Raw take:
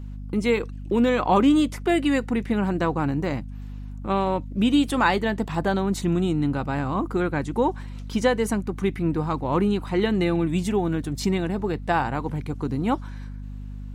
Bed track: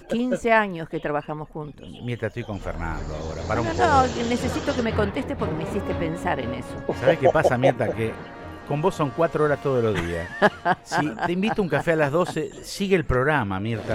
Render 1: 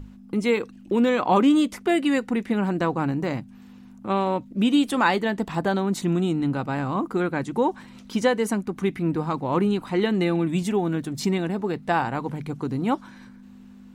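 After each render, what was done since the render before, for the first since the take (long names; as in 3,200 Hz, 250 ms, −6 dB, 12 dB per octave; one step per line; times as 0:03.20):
mains-hum notches 50/100/150 Hz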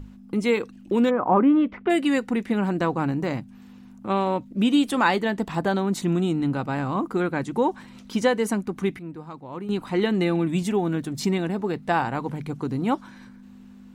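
0:01.09–0:01.89: low-pass filter 1,300 Hz → 3,000 Hz 24 dB per octave
0:08.60–0:10.08: duck −12.5 dB, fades 0.39 s logarithmic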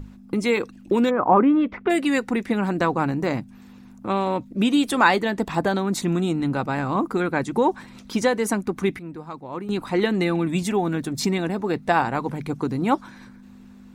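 notch filter 3,000 Hz, Q 15
harmonic and percussive parts rebalanced percussive +5 dB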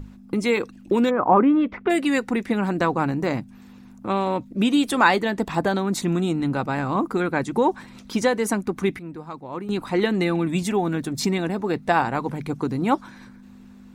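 no processing that can be heard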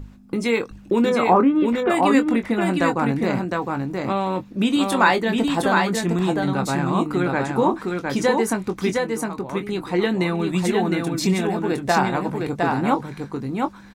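double-tracking delay 22 ms −9 dB
on a send: single-tap delay 710 ms −3.5 dB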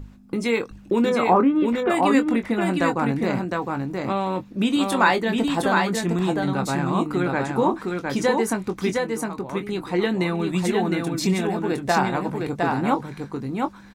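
level −1.5 dB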